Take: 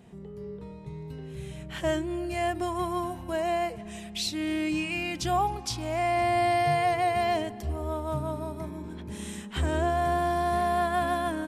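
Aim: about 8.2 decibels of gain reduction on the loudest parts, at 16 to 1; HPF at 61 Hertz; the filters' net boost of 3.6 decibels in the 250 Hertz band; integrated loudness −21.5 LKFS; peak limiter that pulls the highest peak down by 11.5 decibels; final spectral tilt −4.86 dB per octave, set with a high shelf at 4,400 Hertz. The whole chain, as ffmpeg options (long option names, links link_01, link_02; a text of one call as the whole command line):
ffmpeg -i in.wav -af "highpass=61,equalizer=frequency=250:width_type=o:gain=5.5,highshelf=frequency=4400:gain=8.5,acompressor=threshold=-29dB:ratio=16,volume=16.5dB,alimiter=limit=-13.5dB:level=0:latency=1" out.wav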